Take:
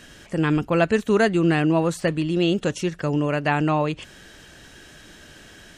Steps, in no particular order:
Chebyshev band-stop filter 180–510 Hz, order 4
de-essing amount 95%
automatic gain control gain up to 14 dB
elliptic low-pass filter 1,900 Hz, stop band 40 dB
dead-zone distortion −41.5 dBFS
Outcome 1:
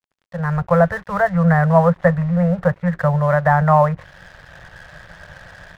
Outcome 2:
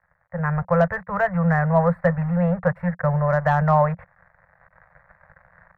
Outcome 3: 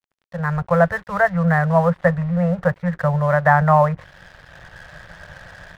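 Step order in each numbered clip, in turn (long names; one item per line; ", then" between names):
de-essing, then Chebyshev band-stop filter, then automatic gain control, then elliptic low-pass filter, then dead-zone distortion
dead-zone distortion, then automatic gain control, then elliptic low-pass filter, then de-essing, then Chebyshev band-stop filter
elliptic low-pass filter, then de-essing, then automatic gain control, then Chebyshev band-stop filter, then dead-zone distortion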